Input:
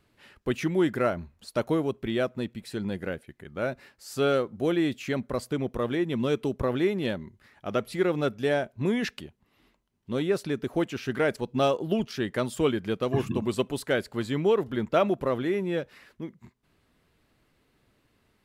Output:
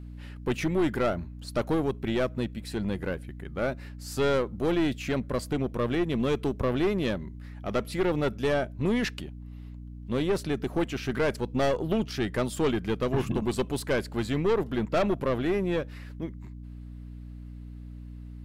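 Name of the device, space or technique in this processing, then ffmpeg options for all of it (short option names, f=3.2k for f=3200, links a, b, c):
valve amplifier with mains hum: -af "aeval=exprs='(tanh(14.1*val(0)+0.4)-tanh(0.4))/14.1':c=same,aeval=exprs='val(0)+0.00708*(sin(2*PI*60*n/s)+sin(2*PI*2*60*n/s)/2+sin(2*PI*3*60*n/s)/3+sin(2*PI*4*60*n/s)/4+sin(2*PI*5*60*n/s)/5)':c=same,volume=3dB"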